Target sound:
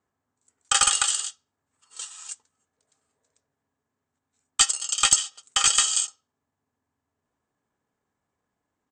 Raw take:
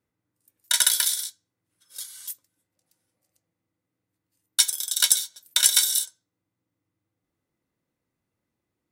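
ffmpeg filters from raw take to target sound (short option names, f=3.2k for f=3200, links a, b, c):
-af "equalizer=f=1.1k:t=o:w=2.4:g=11.5,aeval=exprs='clip(val(0),-1,0.316)':c=same,aresample=22050,aresample=44100,aexciter=amount=2.5:drive=3.3:freq=7.8k,asetrate=37084,aresample=44100,atempo=1.18921,volume=-3.5dB"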